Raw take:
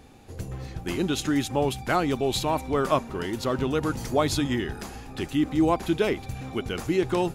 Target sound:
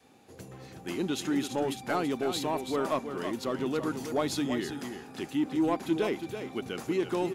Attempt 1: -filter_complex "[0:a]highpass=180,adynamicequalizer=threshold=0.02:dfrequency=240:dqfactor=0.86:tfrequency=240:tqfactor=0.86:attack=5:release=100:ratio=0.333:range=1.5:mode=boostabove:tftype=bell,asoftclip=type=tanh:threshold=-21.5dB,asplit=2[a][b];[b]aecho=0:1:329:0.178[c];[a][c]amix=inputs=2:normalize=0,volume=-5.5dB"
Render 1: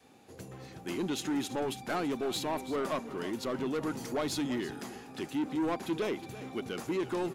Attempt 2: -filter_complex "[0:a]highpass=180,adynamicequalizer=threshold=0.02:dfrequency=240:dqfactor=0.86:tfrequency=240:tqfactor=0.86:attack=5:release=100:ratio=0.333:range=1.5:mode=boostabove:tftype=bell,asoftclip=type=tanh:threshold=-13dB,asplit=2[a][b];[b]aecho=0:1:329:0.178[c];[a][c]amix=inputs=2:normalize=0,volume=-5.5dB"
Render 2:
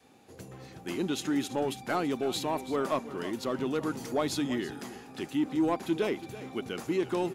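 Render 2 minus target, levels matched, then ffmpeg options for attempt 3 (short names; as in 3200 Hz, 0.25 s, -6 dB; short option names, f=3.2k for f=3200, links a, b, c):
echo-to-direct -6.5 dB
-filter_complex "[0:a]highpass=180,adynamicequalizer=threshold=0.02:dfrequency=240:dqfactor=0.86:tfrequency=240:tqfactor=0.86:attack=5:release=100:ratio=0.333:range=1.5:mode=boostabove:tftype=bell,asoftclip=type=tanh:threshold=-13dB,asplit=2[a][b];[b]aecho=0:1:329:0.376[c];[a][c]amix=inputs=2:normalize=0,volume=-5.5dB"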